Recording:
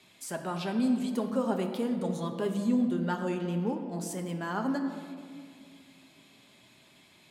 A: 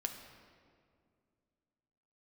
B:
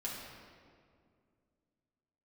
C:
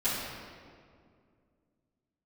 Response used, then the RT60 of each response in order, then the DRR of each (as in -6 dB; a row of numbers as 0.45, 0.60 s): A; 2.2, 2.2, 2.2 s; 4.0, -6.0, -15.0 dB